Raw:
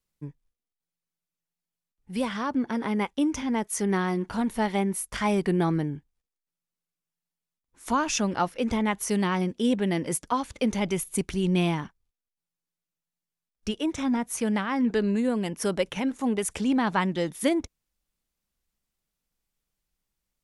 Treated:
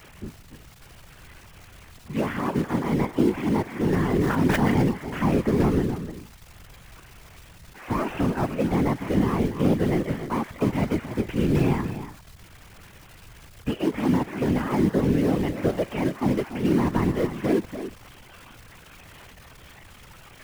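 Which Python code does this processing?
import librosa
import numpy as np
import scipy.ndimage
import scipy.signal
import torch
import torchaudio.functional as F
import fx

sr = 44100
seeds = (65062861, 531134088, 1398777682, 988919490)

p1 = fx.delta_mod(x, sr, bps=16000, step_db=-37.5)
p2 = fx.noise_reduce_blind(p1, sr, reduce_db=8)
p3 = fx.quant_companded(p2, sr, bits=4)
p4 = p2 + F.gain(torch.from_numpy(p3), -8.0).numpy()
p5 = fx.dmg_crackle(p4, sr, seeds[0], per_s=270.0, level_db=-36.0)
p6 = p5 + fx.echo_single(p5, sr, ms=288, db=-11.0, dry=0)
p7 = fx.whisperise(p6, sr, seeds[1])
y = fx.sustainer(p7, sr, db_per_s=29.0, at=(4.12, 4.89))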